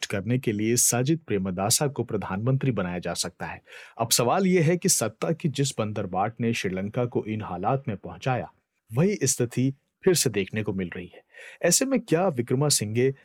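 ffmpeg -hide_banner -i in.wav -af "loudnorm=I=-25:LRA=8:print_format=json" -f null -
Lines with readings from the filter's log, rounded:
"input_i" : "-24.9",
"input_tp" : "-7.7",
"input_lra" : "3.3",
"input_thresh" : "-35.3",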